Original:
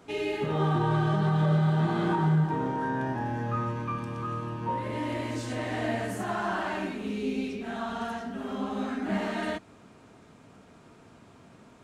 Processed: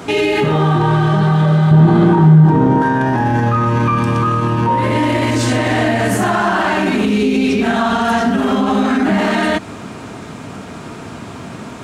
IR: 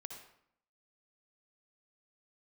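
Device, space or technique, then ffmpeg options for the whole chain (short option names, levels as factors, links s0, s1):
mastering chain: -filter_complex "[0:a]highpass=57,equalizer=f=510:t=o:w=0.77:g=-2.5,acompressor=threshold=0.0282:ratio=2,asoftclip=type=hard:threshold=0.0631,alimiter=level_in=31.6:limit=0.891:release=50:level=0:latency=1,asettb=1/sr,asplit=3[s0][s1][s2];[s0]atrim=end=1.714[s3];[s1]atrim=start=1.71:end=2.82,asetpts=PTS-STARTPTS,afade=t=in:d=0.004:c=qsin,afade=t=out:st=1.106:d=0.004:c=qsin,tiltshelf=f=730:g=6[s4];[s2]atrim=start=2.816[s5];[s3][s4]acrossfade=d=0.004:c1=hsin:c2=qsin[s6];[s6][s5]acrossfade=d=0.004:c1=qsin:c2=hsin,volume=0.501"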